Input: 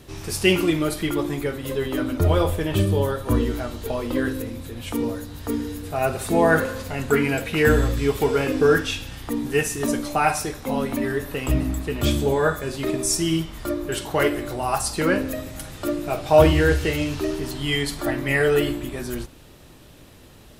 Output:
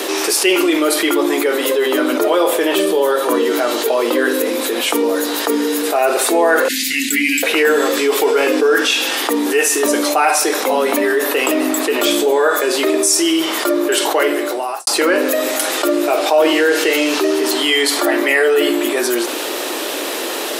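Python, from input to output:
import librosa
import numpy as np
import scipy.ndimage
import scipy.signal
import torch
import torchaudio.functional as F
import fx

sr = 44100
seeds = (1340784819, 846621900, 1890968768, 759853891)

y = fx.cheby1_bandstop(x, sr, low_hz=280.0, high_hz=2000.0, order=4, at=(6.68, 7.43))
y = fx.edit(y, sr, fx.fade_out_span(start_s=14.08, length_s=0.79, curve='qua'), tone=tone)
y = scipy.signal.sosfilt(scipy.signal.butter(6, 320.0, 'highpass', fs=sr, output='sos'), y)
y = fx.env_flatten(y, sr, amount_pct=70)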